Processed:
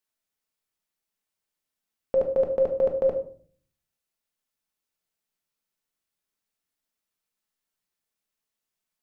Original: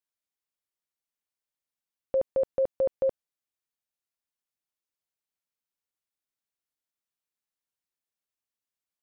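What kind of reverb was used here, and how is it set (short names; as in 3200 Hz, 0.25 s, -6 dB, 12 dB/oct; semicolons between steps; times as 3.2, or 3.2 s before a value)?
shoebox room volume 480 m³, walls furnished, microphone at 1.5 m; gain +4 dB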